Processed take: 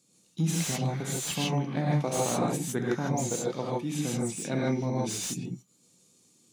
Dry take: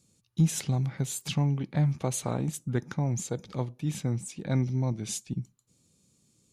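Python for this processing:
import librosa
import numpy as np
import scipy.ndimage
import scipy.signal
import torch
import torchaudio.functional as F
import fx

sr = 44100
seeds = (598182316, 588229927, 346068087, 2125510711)

y = scipy.signal.sosfilt(scipy.signal.butter(2, 220.0, 'highpass', fs=sr, output='sos'), x)
y = fx.rev_gated(y, sr, seeds[0], gate_ms=180, shape='rising', drr_db=-4.5)
y = fx.slew_limit(y, sr, full_power_hz=170.0)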